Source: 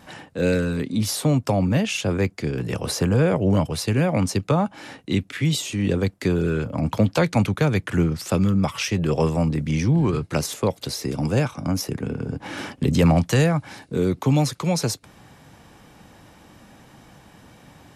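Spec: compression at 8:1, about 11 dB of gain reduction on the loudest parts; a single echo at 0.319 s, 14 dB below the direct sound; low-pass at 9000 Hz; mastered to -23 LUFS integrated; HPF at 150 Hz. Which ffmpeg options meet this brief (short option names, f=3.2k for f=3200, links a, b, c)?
-af "highpass=150,lowpass=9k,acompressor=threshold=-27dB:ratio=8,aecho=1:1:319:0.2,volume=8.5dB"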